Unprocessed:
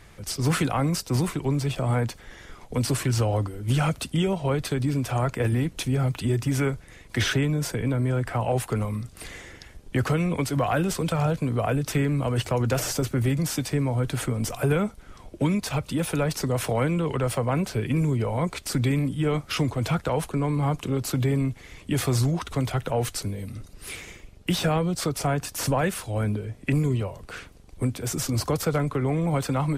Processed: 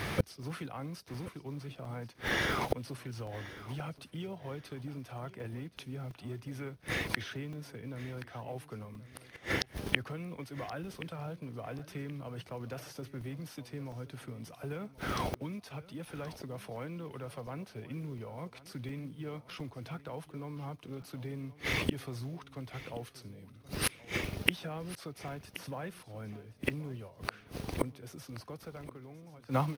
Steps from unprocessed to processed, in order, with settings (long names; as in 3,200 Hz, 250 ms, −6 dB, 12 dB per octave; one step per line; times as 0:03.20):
fade-out on the ending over 1.73 s
log-companded quantiser 6 bits
high-pass filter 100 Hz 12 dB per octave
parametric band 7,400 Hz −15 dB 0.27 octaves
gate with flip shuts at −31 dBFS, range −33 dB
high-shelf EQ 9,500 Hz −6 dB
on a send: repeating echo 1,076 ms, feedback 25%, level −17 dB
on the sum: regular buffer underruns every 0.71 s, samples 128, zero, from 0:00.43
level +16 dB